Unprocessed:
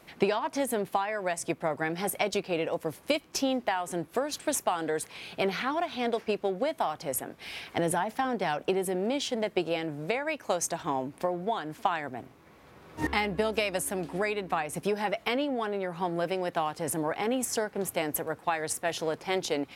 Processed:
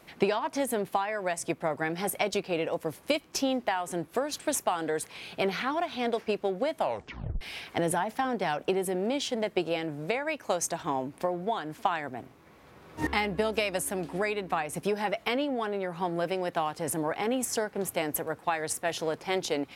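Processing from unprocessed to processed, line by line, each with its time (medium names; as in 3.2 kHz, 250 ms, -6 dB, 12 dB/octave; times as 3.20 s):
6.76 s: tape stop 0.65 s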